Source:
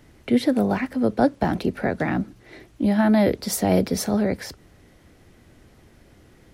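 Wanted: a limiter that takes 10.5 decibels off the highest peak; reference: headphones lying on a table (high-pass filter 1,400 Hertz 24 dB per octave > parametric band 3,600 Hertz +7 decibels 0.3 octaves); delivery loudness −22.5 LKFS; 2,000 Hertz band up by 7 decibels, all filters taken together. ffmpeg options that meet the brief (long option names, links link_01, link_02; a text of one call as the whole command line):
ffmpeg -i in.wav -af "equalizer=frequency=2000:width_type=o:gain=9,alimiter=limit=-15dB:level=0:latency=1,highpass=frequency=1400:width=0.5412,highpass=frequency=1400:width=1.3066,equalizer=frequency=3600:width_type=o:width=0.3:gain=7,volume=9dB" out.wav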